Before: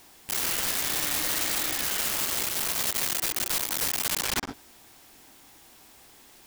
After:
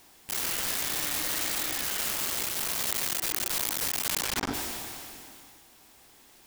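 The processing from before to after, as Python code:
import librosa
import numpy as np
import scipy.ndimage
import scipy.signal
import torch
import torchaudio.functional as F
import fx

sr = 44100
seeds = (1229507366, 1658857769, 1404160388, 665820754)

y = fx.sustainer(x, sr, db_per_s=22.0)
y = y * 10.0 ** (-3.0 / 20.0)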